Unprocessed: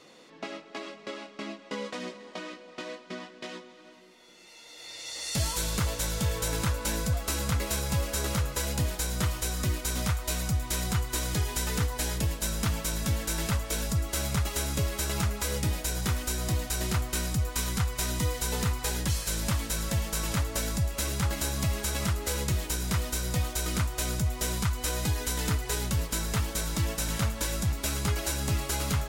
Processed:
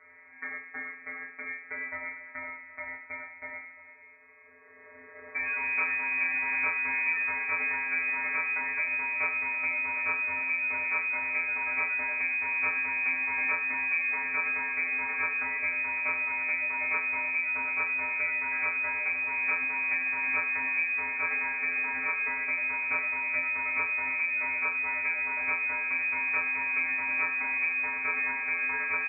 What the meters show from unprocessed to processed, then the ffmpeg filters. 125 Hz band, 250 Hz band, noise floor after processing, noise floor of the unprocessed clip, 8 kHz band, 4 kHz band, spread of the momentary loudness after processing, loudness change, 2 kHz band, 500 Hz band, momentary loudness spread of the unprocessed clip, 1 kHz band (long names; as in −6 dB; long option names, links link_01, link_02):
below −30 dB, −15.0 dB, −52 dBFS, −52 dBFS, below −40 dB, below −40 dB, 11 LU, +2.5 dB, +13.0 dB, −10.0 dB, 11 LU, +1.0 dB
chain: -af "afftfilt=real='hypot(re,im)*cos(PI*b)':imag='0':win_size=1024:overlap=0.75,aecho=1:1:20|42|66.2|92.82|122.1:0.631|0.398|0.251|0.158|0.1,lowpass=frequency=2100:width_type=q:width=0.5098,lowpass=frequency=2100:width_type=q:width=0.6013,lowpass=frequency=2100:width_type=q:width=0.9,lowpass=frequency=2100:width_type=q:width=2.563,afreqshift=-2500,volume=2.5dB"